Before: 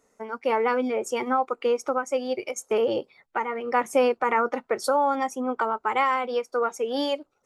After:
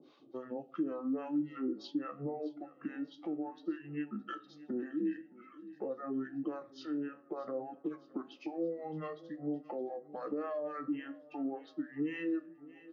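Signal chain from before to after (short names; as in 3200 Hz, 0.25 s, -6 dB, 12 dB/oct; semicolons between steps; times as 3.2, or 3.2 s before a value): reverb removal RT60 1.1 s; compressor, threshold -29 dBFS, peak gain reduction 12.5 dB; limiter -26 dBFS, peak gain reduction 7.5 dB; harmonic tremolo 6.2 Hz, depth 100%, crossover 1100 Hz; flange 0.88 Hz, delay 7.5 ms, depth 3.9 ms, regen +65%; feedback echo 0.356 s, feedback 55%, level -23 dB; on a send at -18 dB: reverb RT60 0.40 s, pre-delay 3 ms; on the sum: speed mistake 78 rpm record played at 45 rpm; speaker cabinet 310–4600 Hz, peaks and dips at 320 Hz +8 dB, 720 Hz -7 dB, 1000 Hz -6 dB, 1500 Hz -4 dB, 3900 Hz -6 dB; three-band squash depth 40%; gain +6.5 dB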